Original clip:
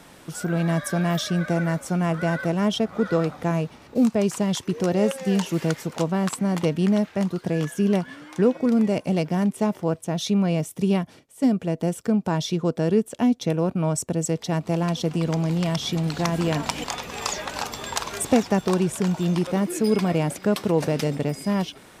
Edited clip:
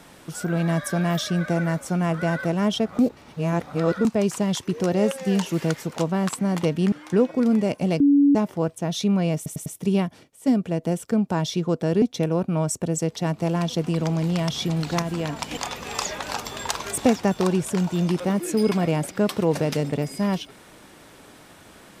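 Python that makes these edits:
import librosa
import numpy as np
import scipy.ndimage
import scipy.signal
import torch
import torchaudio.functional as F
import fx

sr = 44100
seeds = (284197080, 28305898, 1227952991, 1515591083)

y = fx.edit(x, sr, fx.reverse_span(start_s=2.99, length_s=1.06),
    fx.cut(start_s=6.92, length_s=1.26),
    fx.bleep(start_s=9.26, length_s=0.35, hz=284.0, db=-12.5),
    fx.stutter(start_s=10.62, slice_s=0.1, count=4),
    fx.cut(start_s=12.98, length_s=0.31),
    fx.clip_gain(start_s=16.29, length_s=0.49, db=-4.0), tone=tone)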